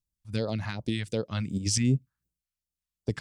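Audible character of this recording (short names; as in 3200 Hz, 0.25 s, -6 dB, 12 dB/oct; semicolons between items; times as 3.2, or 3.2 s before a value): phasing stages 2, 2.7 Hz, lowest notch 360–1900 Hz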